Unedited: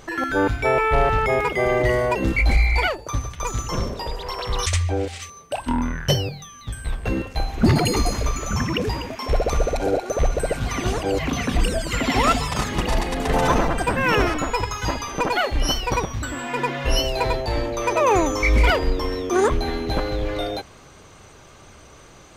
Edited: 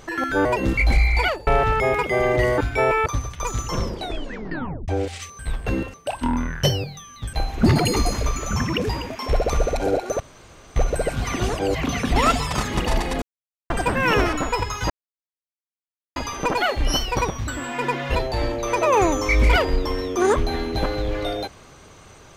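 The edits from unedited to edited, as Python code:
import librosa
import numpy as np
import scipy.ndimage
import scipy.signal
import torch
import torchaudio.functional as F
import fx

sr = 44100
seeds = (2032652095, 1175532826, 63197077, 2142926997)

y = fx.edit(x, sr, fx.swap(start_s=0.45, length_s=0.48, other_s=2.04, other_length_s=1.02),
    fx.tape_stop(start_s=3.82, length_s=1.06),
    fx.move(start_s=6.78, length_s=0.55, to_s=5.39),
    fx.insert_room_tone(at_s=10.2, length_s=0.56),
    fx.cut(start_s=11.6, length_s=0.57),
    fx.silence(start_s=13.23, length_s=0.48),
    fx.insert_silence(at_s=14.91, length_s=1.26),
    fx.cut(start_s=16.9, length_s=0.39), tone=tone)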